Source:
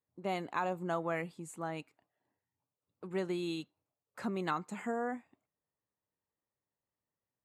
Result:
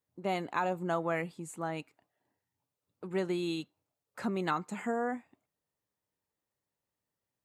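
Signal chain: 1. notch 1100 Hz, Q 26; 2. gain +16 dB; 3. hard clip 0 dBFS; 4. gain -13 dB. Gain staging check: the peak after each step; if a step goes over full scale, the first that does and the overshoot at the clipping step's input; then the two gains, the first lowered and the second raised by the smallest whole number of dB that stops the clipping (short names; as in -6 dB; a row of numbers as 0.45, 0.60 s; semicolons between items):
-20.0, -4.0, -4.0, -17.0 dBFS; no overload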